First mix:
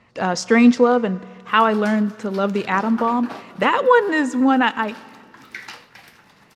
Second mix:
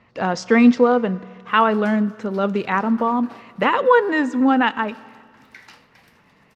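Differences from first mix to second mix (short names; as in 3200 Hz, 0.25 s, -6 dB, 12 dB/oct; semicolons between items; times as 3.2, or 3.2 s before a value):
speech: add air absorption 100 m; background -9.5 dB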